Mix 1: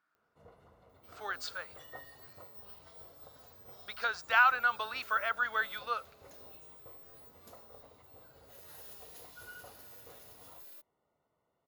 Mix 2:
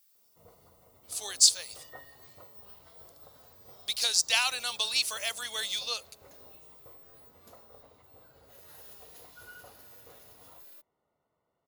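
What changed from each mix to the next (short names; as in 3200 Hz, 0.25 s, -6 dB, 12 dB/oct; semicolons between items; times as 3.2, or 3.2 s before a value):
speech: remove synth low-pass 1400 Hz, resonance Q 6.1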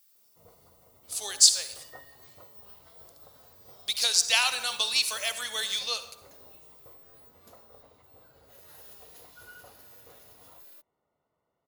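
reverb: on, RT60 0.90 s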